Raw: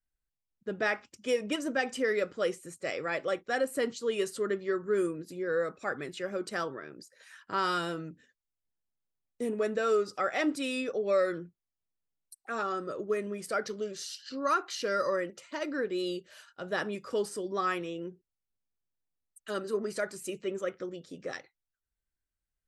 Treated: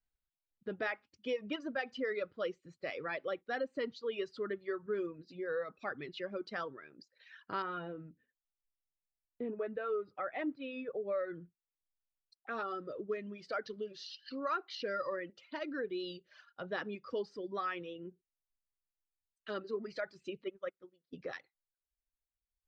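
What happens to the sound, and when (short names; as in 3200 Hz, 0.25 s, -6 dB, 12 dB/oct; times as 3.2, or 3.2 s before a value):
7.62–11.41 air absorption 490 m
20.44–21.13 upward expander 2.5:1, over -45 dBFS
whole clip: reverb removal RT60 1.7 s; steep low-pass 4700 Hz 36 dB/oct; compressor 1.5:1, threshold -40 dBFS; gain -1.5 dB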